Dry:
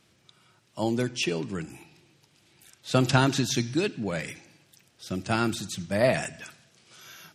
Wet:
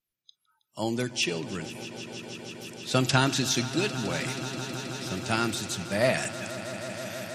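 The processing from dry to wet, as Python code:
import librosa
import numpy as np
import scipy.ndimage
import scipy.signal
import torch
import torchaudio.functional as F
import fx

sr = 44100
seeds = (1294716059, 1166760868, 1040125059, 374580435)

y = fx.tilt_shelf(x, sr, db=-3.0, hz=1500.0)
y = fx.noise_reduce_blind(y, sr, reduce_db=29)
y = fx.echo_swell(y, sr, ms=160, loudest=5, wet_db=-16.0)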